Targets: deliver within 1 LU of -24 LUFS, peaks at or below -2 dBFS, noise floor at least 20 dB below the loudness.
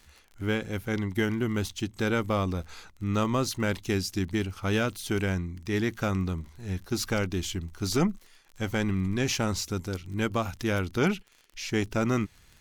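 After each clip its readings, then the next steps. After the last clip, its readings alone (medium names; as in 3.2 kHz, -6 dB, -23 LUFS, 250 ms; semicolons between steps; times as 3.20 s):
tick rate 31 per s; loudness -29.5 LUFS; peak level -16.0 dBFS; loudness target -24.0 LUFS
-> de-click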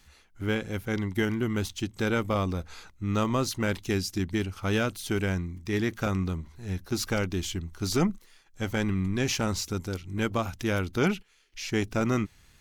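tick rate 0.95 per s; loudness -29.5 LUFS; peak level -15.5 dBFS; loudness target -24.0 LUFS
-> trim +5.5 dB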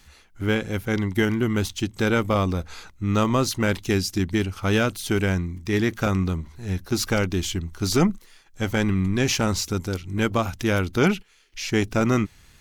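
loudness -24.0 LUFS; peak level -10.0 dBFS; noise floor -54 dBFS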